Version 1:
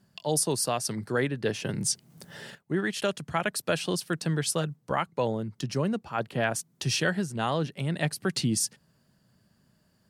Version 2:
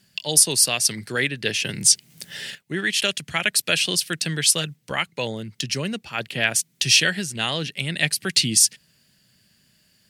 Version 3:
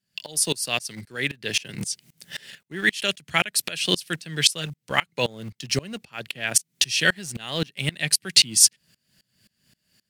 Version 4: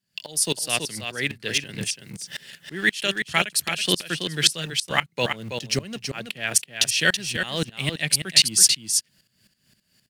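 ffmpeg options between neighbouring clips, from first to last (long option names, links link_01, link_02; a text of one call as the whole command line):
ffmpeg -i in.wav -af "highshelf=frequency=1600:width_type=q:width=1.5:gain=12" out.wav
ffmpeg -i in.wav -filter_complex "[0:a]dynaudnorm=framelen=700:gausssize=3:maxgain=15dB,asplit=2[link_01][link_02];[link_02]aeval=exprs='val(0)*gte(abs(val(0)),0.0398)':channel_layout=same,volume=-8.5dB[link_03];[link_01][link_03]amix=inputs=2:normalize=0,aeval=exprs='val(0)*pow(10,-25*if(lt(mod(-3.8*n/s,1),2*abs(-3.8)/1000),1-mod(-3.8*n/s,1)/(2*abs(-3.8)/1000),(mod(-3.8*n/s,1)-2*abs(-3.8)/1000)/(1-2*abs(-3.8)/1000))/20)':channel_layout=same,volume=1dB" out.wav
ffmpeg -i in.wav -af "aecho=1:1:327:0.447" out.wav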